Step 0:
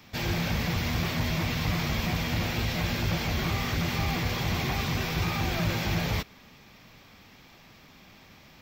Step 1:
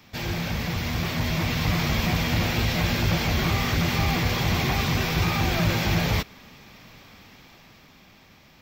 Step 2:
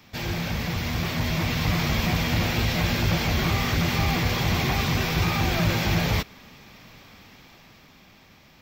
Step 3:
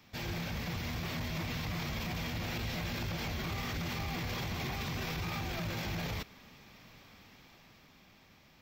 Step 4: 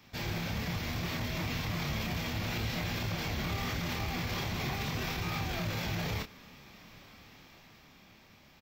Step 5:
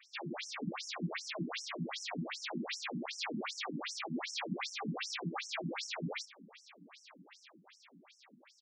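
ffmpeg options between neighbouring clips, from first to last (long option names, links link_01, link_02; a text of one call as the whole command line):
ffmpeg -i in.wav -af "dynaudnorm=framelen=240:gausssize=11:maxgain=5dB" out.wav
ffmpeg -i in.wav -af anull out.wav
ffmpeg -i in.wav -af "alimiter=limit=-21dB:level=0:latency=1:release=23,volume=-8dB" out.wav
ffmpeg -i in.wav -filter_complex "[0:a]asplit=2[link_01][link_02];[link_02]adelay=28,volume=-5.5dB[link_03];[link_01][link_03]amix=inputs=2:normalize=0,volume=1.5dB" out.wav
ffmpeg -i in.wav -af "afftfilt=real='re*between(b*sr/1024,220*pow(7600/220,0.5+0.5*sin(2*PI*2.6*pts/sr))/1.41,220*pow(7600/220,0.5+0.5*sin(2*PI*2.6*pts/sr))*1.41)':imag='im*between(b*sr/1024,220*pow(7600/220,0.5+0.5*sin(2*PI*2.6*pts/sr))/1.41,220*pow(7600/220,0.5+0.5*sin(2*PI*2.6*pts/sr))*1.41)':win_size=1024:overlap=0.75,volume=5dB" out.wav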